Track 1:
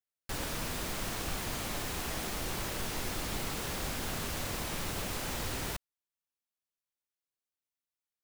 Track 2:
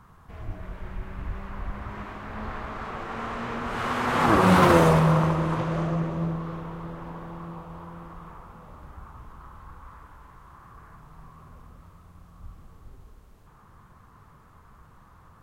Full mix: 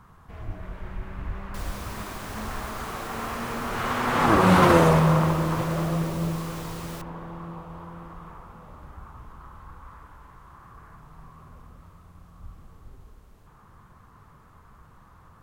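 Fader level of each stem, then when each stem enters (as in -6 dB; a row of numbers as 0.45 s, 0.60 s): -4.5 dB, +0.5 dB; 1.25 s, 0.00 s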